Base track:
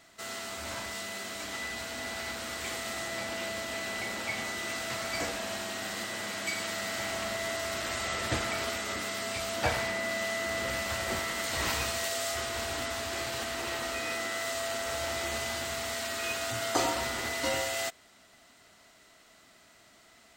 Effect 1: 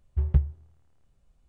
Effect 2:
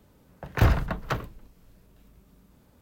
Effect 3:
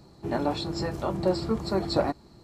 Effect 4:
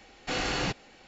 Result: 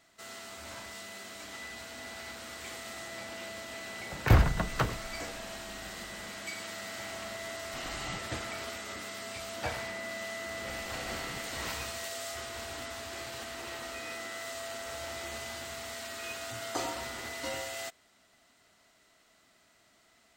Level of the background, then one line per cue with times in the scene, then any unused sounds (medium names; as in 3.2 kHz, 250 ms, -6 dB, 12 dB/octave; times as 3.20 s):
base track -6.5 dB
3.69 s: add 2 -7 dB + level rider gain up to 9.5 dB
7.46 s: add 4 -13.5 dB + comb 1 ms
10.66 s: add 4 -2 dB + compressor with a negative ratio -40 dBFS
not used: 1, 3